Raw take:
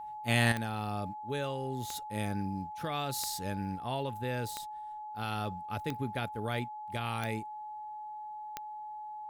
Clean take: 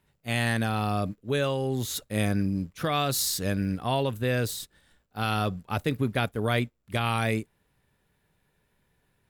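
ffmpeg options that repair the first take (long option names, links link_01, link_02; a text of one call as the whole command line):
ffmpeg -i in.wav -af "adeclick=threshold=4,bandreject=frequency=850:width=30,asetnsamples=nb_out_samples=441:pad=0,asendcmd='0.52 volume volume 9dB',volume=0dB" out.wav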